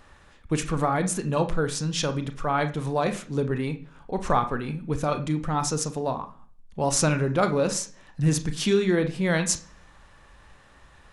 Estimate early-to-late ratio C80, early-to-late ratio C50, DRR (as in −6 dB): 19.0 dB, 13.5 dB, 8.0 dB